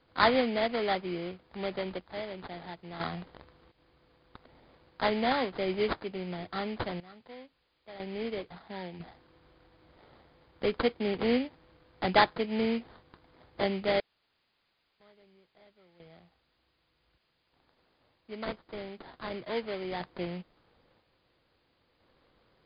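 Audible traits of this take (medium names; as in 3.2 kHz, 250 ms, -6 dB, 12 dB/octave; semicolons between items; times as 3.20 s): aliases and images of a low sample rate 2.7 kHz, jitter 20%; random-step tremolo 1 Hz, depth 100%; a quantiser's noise floor 12-bit, dither triangular; MP3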